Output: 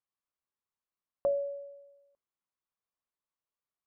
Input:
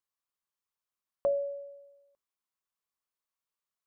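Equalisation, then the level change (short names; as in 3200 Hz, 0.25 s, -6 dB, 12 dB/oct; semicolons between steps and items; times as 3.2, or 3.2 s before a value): LPF 1300 Hz 6 dB/oct; 0.0 dB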